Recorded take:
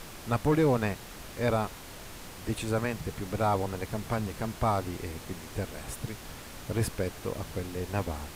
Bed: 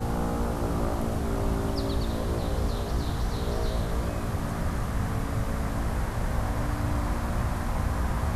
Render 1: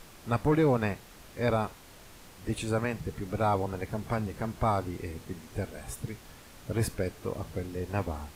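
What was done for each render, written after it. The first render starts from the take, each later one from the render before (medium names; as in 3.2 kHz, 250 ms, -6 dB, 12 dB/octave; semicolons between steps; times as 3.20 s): noise print and reduce 7 dB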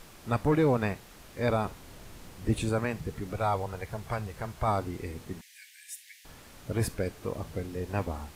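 1.65–2.69 s: bass shelf 400 Hz +6.5 dB; 3.33–4.68 s: peaking EQ 260 Hz -10.5 dB 1.1 oct; 5.41–6.25 s: steep high-pass 1.7 kHz 96 dB/octave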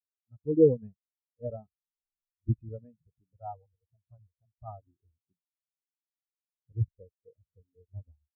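level rider gain up to 6 dB; spectral contrast expander 4:1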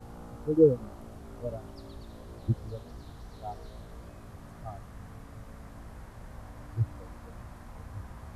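add bed -17.5 dB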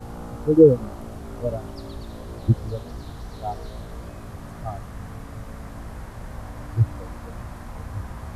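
trim +9.5 dB; peak limiter -3 dBFS, peak gain reduction 2.5 dB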